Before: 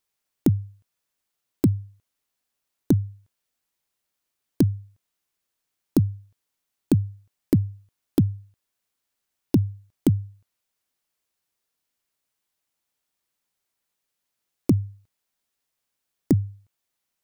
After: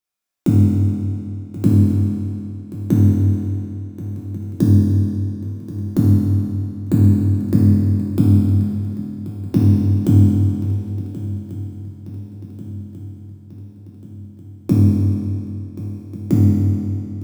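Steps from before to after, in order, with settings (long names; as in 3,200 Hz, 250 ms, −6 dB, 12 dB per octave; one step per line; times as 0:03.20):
noise gate −52 dBFS, range −13 dB
brickwall limiter −16 dBFS, peak gain reduction 8.5 dB
feedback echo with a long and a short gap by turns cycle 1,441 ms, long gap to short 3 to 1, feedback 55%, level −15.5 dB
convolution reverb RT60 2.7 s, pre-delay 4 ms, DRR −8 dB
level +4.5 dB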